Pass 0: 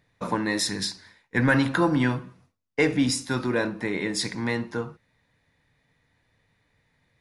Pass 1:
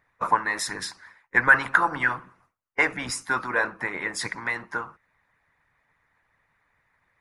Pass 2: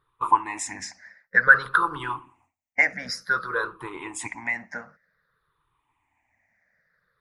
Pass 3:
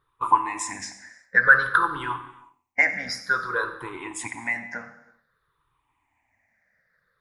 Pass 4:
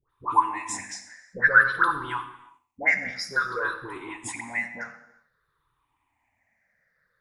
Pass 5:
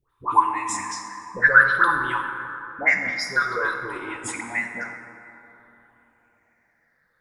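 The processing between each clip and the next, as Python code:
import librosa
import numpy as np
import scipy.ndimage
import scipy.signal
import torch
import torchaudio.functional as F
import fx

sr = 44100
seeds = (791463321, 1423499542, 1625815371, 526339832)

y1 = fx.graphic_eq_10(x, sr, hz=(250, 1000, 2000, 4000), db=(-6, 7, 5, -7))
y1 = fx.hpss(y1, sr, part='harmonic', gain_db=-14)
y1 = fx.peak_eq(y1, sr, hz=1300.0, db=6.0, octaves=0.88)
y2 = fx.spec_ripple(y1, sr, per_octave=0.63, drift_hz=-0.54, depth_db=20)
y2 = F.gain(torch.from_numpy(y2), -6.5).numpy()
y3 = y2 + 10.0 ** (-17.0 / 20.0) * np.pad(y2, (int(90 * sr / 1000.0), 0))[:len(y2)]
y3 = fx.rev_gated(y3, sr, seeds[0], gate_ms=390, shape='falling', drr_db=9.5)
y4 = fx.dispersion(y3, sr, late='highs', ms=97.0, hz=1000.0)
y4 = F.gain(torch.from_numpy(y4), -1.5).numpy()
y5 = fx.rev_plate(y4, sr, seeds[1], rt60_s=3.7, hf_ratio=0.4, predelay_ms=0, drr_db=7.5)
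y5 = F.gain(torch.from_numpy(y5), 3.0).numpy()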